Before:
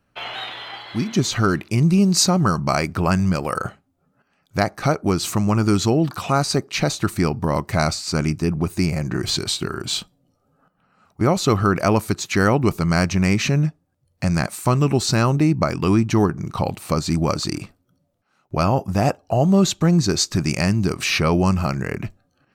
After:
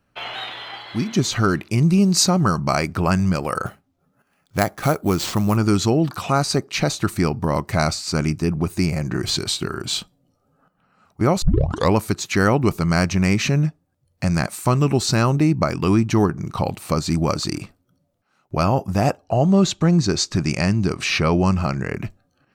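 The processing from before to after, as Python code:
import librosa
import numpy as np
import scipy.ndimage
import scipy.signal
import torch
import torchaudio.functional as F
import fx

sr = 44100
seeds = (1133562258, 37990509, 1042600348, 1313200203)

y = fx.sample_hold(x, sr, seeds[0], rate_hz=12000.0, jitter_pct=0, at=(3.66, 5.57))
y = fx.bessel_lowpass(y, sr, hz=7000.0, order=2, at=(19.24, 21.95))
y = fx.edit(y, sr, fx.tape_start(start_s=11.42, length_s=0.53), tone=tone)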